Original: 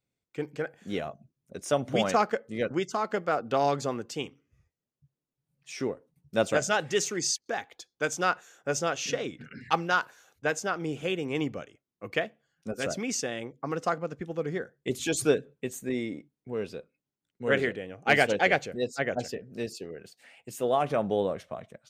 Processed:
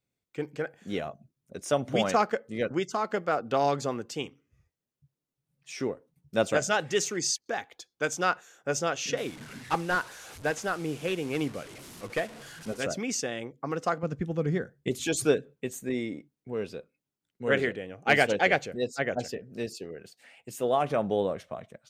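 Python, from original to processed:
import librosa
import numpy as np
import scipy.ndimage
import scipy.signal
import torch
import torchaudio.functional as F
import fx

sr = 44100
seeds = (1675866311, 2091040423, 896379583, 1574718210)

y = fx.delta_mod(x, sr, bps=64000, step_db=-40.0, at=(9.17, 12.81))
y = fx.bass_treble(y, sr, bass_db=10, treble_db=1, at=(14.03, 14.89))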